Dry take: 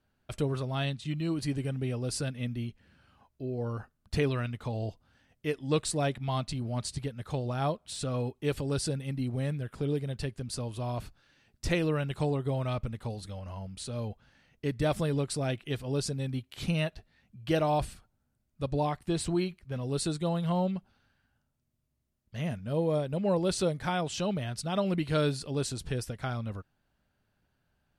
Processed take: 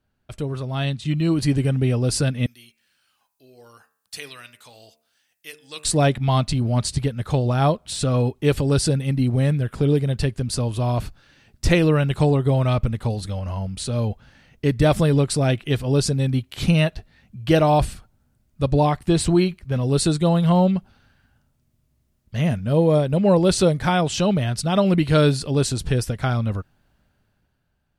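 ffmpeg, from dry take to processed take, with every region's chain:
-filter_complex "[0:a]asettb=1/sr,asplit=3[a][b][c];[a]atrim=end=2.464[d];[b]atrim=start=2.46:end=5.85,asetpts=PTS-STARTPTS,afade=t=in:d=0.004:c=qsin,afade=t=out:st=3.386:d=0.004:c=qsin,aderivative,bandreject=f=75.6:t=h:w=4,bandreject=f=151.2:t=h:w=4,bandreject=f=226.8:t=h:w=4,bandreject=f=302.4:t=h:w=4,bandreject=f=378:t=h:w=4,bandreject=f=453.6:t=h:w=4,bandreject=f=529.2:t=h:w=4,bandreject=f=604.8:t=h:w=4,bandreject=f=680.4:t=h:w=4,bandreject=f=756:t=h:w=4,bandreject=f=831.6:t=h:w=4,bandreject=f=907.2:t=h:w=4,bandreject=f=982.8:t=h:w=4,bandreject=f=1.0584k:t=h:w=4,bandreject=f=1.134k:t=h:w=4,bandreject=f=1.2096k:t=h:w=4,bandreject=f=1.2852k:t=h:w=4,bandreject=f=1.3608k:t=h:w=4,bandreject=f=1.4364k:t=h:w=4,bandreject=f=1.512k:t=h:w=4,bandreject=f=1.5876k:t=h:w=4,bandreject=f=1.6632k:t=h:w=4,bandreject=f=1.7388k:t=h:w=4,bandreject=f=1.8144k:t=h:w=4,bandreject=f=1.89k:t=h:w=4,bandreject=f=1.9656k:t=h:w=4,bandreject=f=2.0412k:t=h:w=4,bandreject=f=2.1168k:t=h:w=4,bandreject=f=2.1924k:t=h:w=4,bandreject=f=2.268k:t=h:w=4,bandreject=f=2.3436k:t=h:w=4,bandreject=f=2.4192k:t=h:w=4,bandreject=f=2.4948k:t=h:w=4,bandreject=f=2.5704k:t=h:w=4,bandreject=f=2.646k:t=h:w=4,bandreject=f=2.7216k:t=h:w=4[e];[c]atrim=start=5.846[f];[d][e]acrossfade=d=0.004:c1=hsin:c2=qsin[g];[g][f]acrossfade=d=0.004:c1=qsin:c2=hsin,lowshelf=f=190:g=4,dynaudnorm=f=140:g=13:m=10.5dB"

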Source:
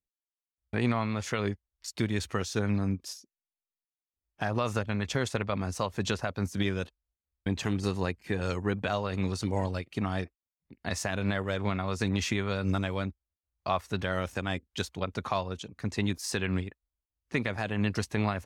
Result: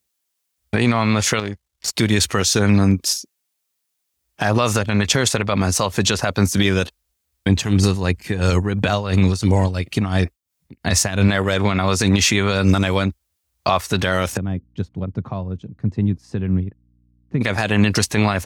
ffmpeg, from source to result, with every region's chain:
-filter_complex "[0:a]asettb=1/sr,asplit=3[a][b][c];[a]atrim=end=1.394[d];[b]atrim=start=1.39:end=1.93,asetpts=PTS-STARTPTS,afade=t=in:d=0.004:c=qsin,afade=t=out:st=0.536:d=0.004:c=qsin,aeval=exprs='if(lt(val(0),0),0.447*val(0),val(0))':c=same,highshelf=f=9.5k:g=-7,acompressor=threshold=-34dB:ratio=6:attack=3.2:release=140:knee=1:detection=peak[e];[c]atrim=start=1.926[f];[d][e]acrossfade=d=0.004:c1=hsin:c2=qsin[g];[g][f]acrossfade=d=0.004:c1=qsin:c2=hsin,asettb=1/sr,asplit=3[h][i][j];[h]atrim=end=7.494[k];[i]atrim=start=7.49:end=11.28,asetpts=PTS-STARTPTS,afade=t=in:d=0.004:c=qsin,afade=t=out:st=3.786:d=0.004:c=qsin,lowshelf=f=180:g=9,tremolo=f=2.9:d=0.75[l];[j]atrim=start=11.276[m];[k][l]acrossfade=d=0.004:c1=hsin:c2=qsin[n];[n][m]acrossfade=d=0.004:c1=qsin:c2=hsin,asettb=1/sr,asplit=3[o][p][q];[o]atrim=end=14.374[r];[p]atrim=start=14.37:end=17.41,asetpts=PTS-STARTPTS,afade=t=in:d=0.004:c=qsin,afade=t=out:st=3.036:d=0.004:c=qsin,bandpass=f=130:t=q:w=1.2,aeval=exprs='val(0)+0.000316*(sin(2*PI*60*n/s)+sin(2*PI*2*60*n/s)/2+sin(2*PI*3*60*n/s)/3+sin(2*PI*4*60*n/s)/4+sin(2*PI*5*60*n/s)/5)':c=same[s];[q]atrim=start=17.406[t];[r][s]acrossfade=d=0.004:c1=hsin:c2=qsin[u];[u][t]acrossfade=d=0.004:c1=qsin:c2=hsin,highpass=57,highshelf=f=3.1k:g=8,alimiter=level_in=18.5dB:limit=-1dB:release=50:level=0:latency=1,volume=-4dB"

